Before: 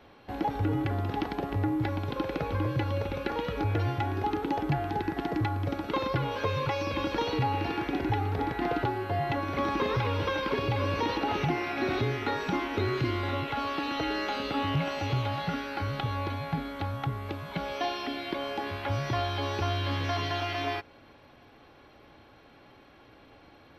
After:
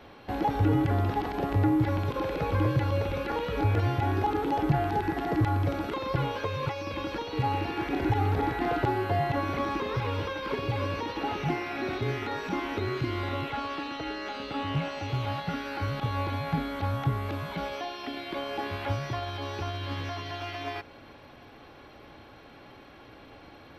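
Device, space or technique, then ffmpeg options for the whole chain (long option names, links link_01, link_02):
de-esser from a sidechain: -filter_complex "[0:a]asplit=2[link_01][link_02];[link_02]highpass=6500,apad=whole_len=1048875[link_03];[link_01][link_03]sidechaincompress=threshold=-58dB:ratio=10:attack=1:release=21,asettb=1/sr,asplit=3[link_04][link_05][link_06];[link_04]atrim=end=13.504[link_07];[link_05]atrim=start=13.5:end=15.09,asetpts=PTS-STARTPTS,afade=type=in:duration=0.004:curve=qsin,afade=type=out:start_time=1.586:duration=0.004:curve=qsin,lowpass=9900[link_08];[link_06]atrim=start=15.086[link_09];[link_07][link_08]acrossfade=duration=0.004:curve1=hsin:curve2=qsin[link_10];[link_10][link_09]acrossfade=duration=0.004:curve1=qsin:curve2=hsin,volume=5dB"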